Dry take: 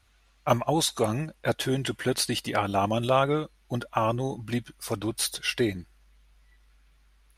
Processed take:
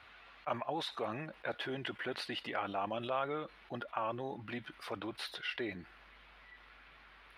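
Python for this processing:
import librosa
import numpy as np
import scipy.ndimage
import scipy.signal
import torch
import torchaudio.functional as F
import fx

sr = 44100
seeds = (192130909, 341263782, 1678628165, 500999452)

y = fx.block_float(x, sr, bits=7)
y = fx.highpass(y, sr, hz=1100.0, slope=6)
y = fx.air_absorb(y, sr, metres=430.0)
y = fx.env_flatten(y, sr, amount_pct=50)
y = y * librosa.db_to_amplitude(-7.5)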